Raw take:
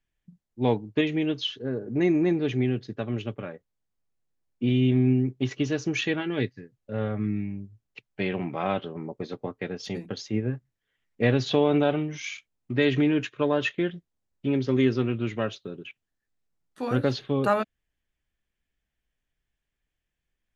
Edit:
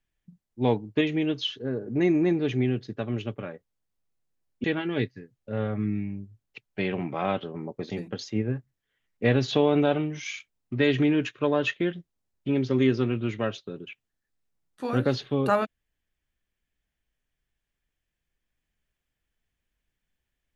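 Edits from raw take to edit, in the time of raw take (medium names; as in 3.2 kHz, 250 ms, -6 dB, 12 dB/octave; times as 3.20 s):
4.64–6.05 s: delete
9.31–9.88 s: delete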